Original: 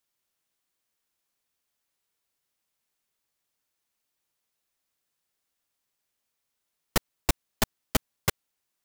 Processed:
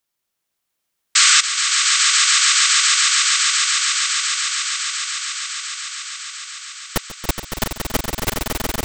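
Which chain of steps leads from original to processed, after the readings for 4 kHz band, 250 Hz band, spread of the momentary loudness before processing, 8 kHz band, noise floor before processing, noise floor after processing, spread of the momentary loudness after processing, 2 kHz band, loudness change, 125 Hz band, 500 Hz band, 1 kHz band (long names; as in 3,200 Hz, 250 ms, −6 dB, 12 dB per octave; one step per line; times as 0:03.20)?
+24.5 dB, +6.5 dB, 3 LU, +25.0 dB, −82 dBFS, −78 dBFS, 15 LU, +21.5 dB, +15.0 dB, can't be measured, +7.5 dB, +15.0 dB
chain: sound drawn into the spectrogram noise, 0:01.15–0:01.41, 1,100–8,400 Hz −15 dBFS
echo that builds up and dies away 140 ms, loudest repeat 8, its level −5.5 dB
level +3 dB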